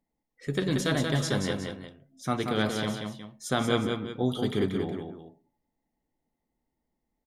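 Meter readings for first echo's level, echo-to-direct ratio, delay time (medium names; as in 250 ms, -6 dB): -5.0 dB, -4.5 dB, 182 ms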